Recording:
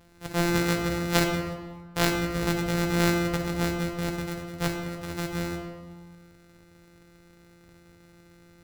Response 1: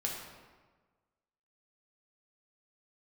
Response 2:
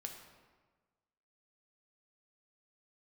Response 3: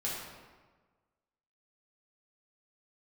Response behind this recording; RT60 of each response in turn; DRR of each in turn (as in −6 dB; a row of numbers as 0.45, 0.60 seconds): 2; 1.4, 1.4, 1.4 seconds; −2.0, 2.5, −6.5 decibels